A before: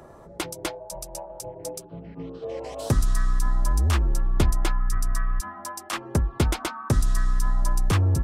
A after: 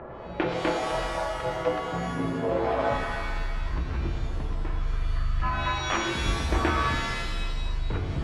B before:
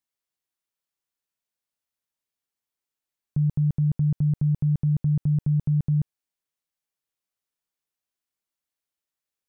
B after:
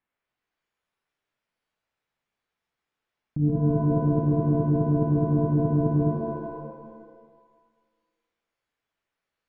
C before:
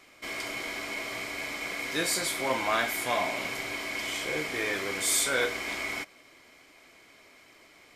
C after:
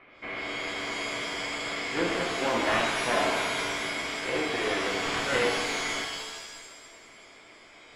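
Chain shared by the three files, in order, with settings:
phase distortion by the signal itself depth 0.51 ms
low-pass filter 2,500 Hz 24 dB per octave
mains-hum notches 50/100/150/200/250/300/350/400/450 Hz
dynamic equaliser 300 Hz, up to +5 dB, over −39 dBFS, Q 0.85
compressor whose output falls as the input rises −29 dBFS, ratio −1
reverb with rising layers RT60 1.5 s, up +7 semitones, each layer −2 dB, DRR 3.5 dB
normalise the peak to −12 dBFS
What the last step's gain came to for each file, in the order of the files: −0.5, +5.0, +3.0 decibels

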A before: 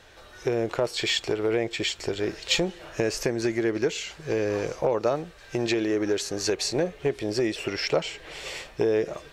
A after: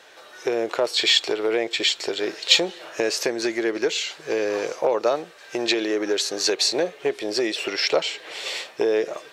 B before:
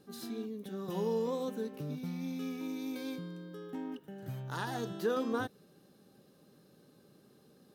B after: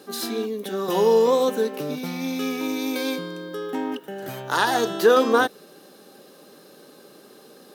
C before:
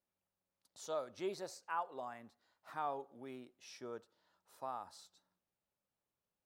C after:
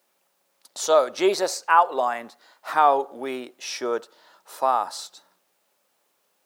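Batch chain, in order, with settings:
high-pass filter 370 Hz 12 dB per octave
dynamic equaliser 3,900 Hz, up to +7 dB, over −48 dBFS, Q 2.3
loudness normalisation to −23 LKFS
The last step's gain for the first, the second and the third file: +4.0, +18.0, +22.5 decibels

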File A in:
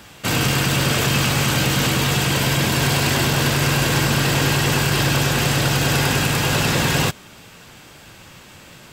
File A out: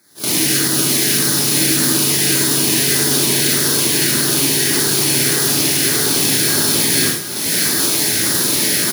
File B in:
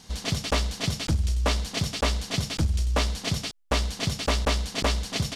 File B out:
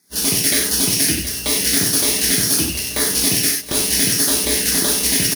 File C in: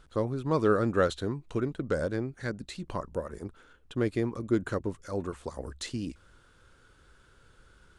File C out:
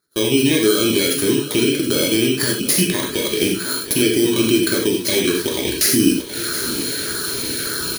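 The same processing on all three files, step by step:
samples in bit-reversed order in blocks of 16 samples
camcorder AGC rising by 52 dB per second
meter weighting curve A
noise gate −38 dBFS, range −18 dB
flat-topped bell 820 Hz −12 dB
brickwall limiter −16.5 dBFS
auto-filter notch saw down 1.7 Hz 880–3,000 Hz
on a send: repeating echo 724 ms, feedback 52%, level −13 dB
on the sum: reverb whose tail is shaped and stops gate 120 ms flat, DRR −0.5 dB
normalise the peak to −2 dBFS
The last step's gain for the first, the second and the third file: +9.5, +10.0, +11.5 decibels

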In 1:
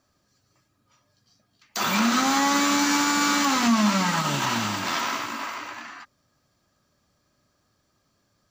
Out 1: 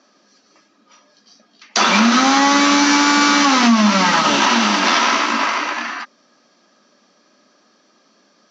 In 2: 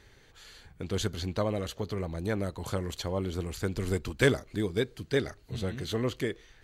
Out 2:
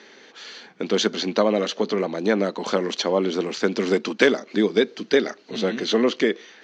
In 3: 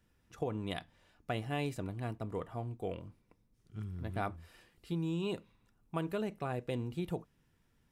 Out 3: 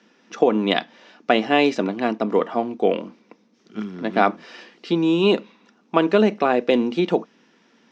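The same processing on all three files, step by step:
Chebyshev band-pass filter 210–6,000 Hz, order 4
downward compressor 3 to 1, threshold −27 dBFS
normalise the peak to −1.5 dBFS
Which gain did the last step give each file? +15.0, +13.0, +20.5 decibels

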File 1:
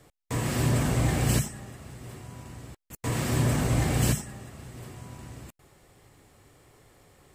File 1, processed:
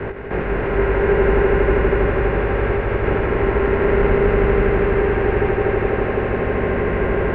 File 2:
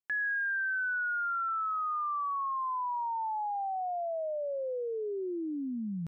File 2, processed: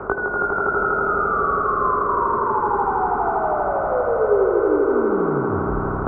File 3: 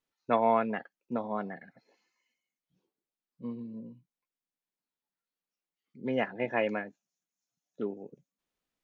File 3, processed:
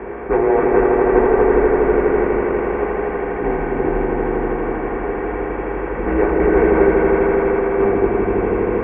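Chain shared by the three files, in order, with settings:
compressor on every frequency bin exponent 0.2
hollow resonant body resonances 240/600 Hz, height 16 dB, ringing for 75 ms
in parallel at +1 dB: speech leveller within 3 dB 0.5 s
on the sum: single-sideband voice off tune −200 Hz 350–2,500 Hz
multi-voice chorus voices 2, 0.63 Hz, delay 19 ms, depth 2.9 ms
on a send: echo that builds up and dies away 81 ms, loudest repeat 5, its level −6 dB
on the sum: level −1 dB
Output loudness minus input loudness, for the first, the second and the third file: +8.5, +13.0, +15.5 LU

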